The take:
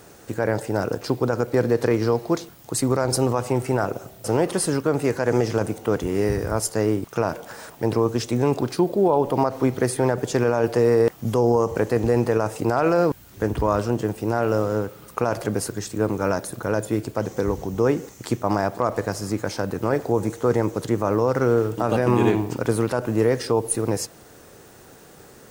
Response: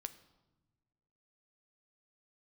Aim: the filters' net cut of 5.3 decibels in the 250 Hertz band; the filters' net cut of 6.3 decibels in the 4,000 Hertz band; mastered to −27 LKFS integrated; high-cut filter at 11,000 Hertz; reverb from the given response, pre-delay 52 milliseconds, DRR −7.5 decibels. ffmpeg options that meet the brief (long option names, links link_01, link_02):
-filter_complex "[0:a]lowpass=11000,equalizer=frequency=250:width_type=o:gain=-7.5,equalizer=frequency=4000:width_type=o:gain=-9,asplit=2[link_01][link_02];[1:a]atrim=start_sample=2205,adelay=52[link_03];[link_02][link_03]afir=irnorm=-1:irlink=0,volume=11dB[link_04];[link_01][link_04]amix=inputs=2:normalize=0,volume=-10dB"